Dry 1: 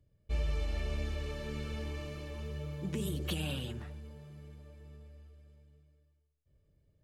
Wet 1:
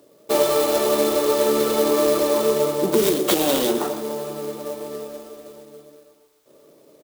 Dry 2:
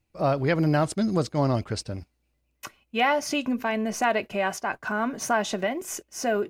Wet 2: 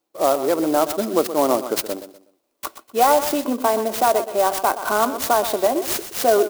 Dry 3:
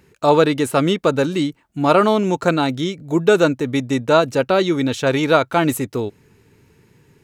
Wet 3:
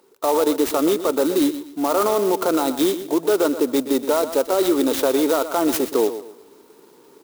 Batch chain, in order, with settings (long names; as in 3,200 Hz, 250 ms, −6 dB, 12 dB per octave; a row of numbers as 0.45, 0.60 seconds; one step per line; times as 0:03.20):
high-pass filter 310 Hz 24 dB per octave
flat-topped bell 2,200 Hz −15.5 dB 1.1 octaves
speech leveller within 5 dB 0.5 s
brickwall limiter −15 dBFS
on a send: repeating echo 123 ms, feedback 31%, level −12 dB
on the sum: converter with an unsteady clock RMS 0.049 ms
loudness normalisation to −20 LKFS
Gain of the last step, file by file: +26.5, +8.5, +4.5 decibels